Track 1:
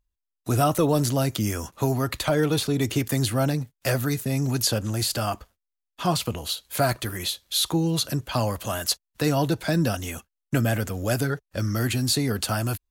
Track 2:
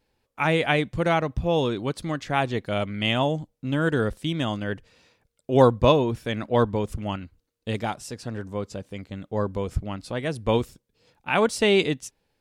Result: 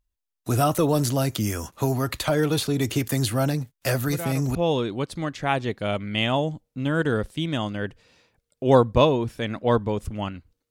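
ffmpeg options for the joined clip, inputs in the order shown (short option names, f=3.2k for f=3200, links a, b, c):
-filter_complex "[1:a]asplit=2[a][b];[0:a]apad=whole_dur=10.7,atrim=end=10.7,atrim=end=4.552[c];[b]atrim=start=1.418:end=7.57[d];[a]atrim=start=0.91:end=1.42,asetpts=PTS-STARTPTS,volume=-11dB,afade=t=in:d=0.004:c=hsin,afade=t=out:st=0.506:d=0.004:c=hsin,adelay=4040[e];[c][d]acrossfade=d=0.004:c1=hsin:c2=hsin[f];[f][e]amix=inputs=2:normalize=0"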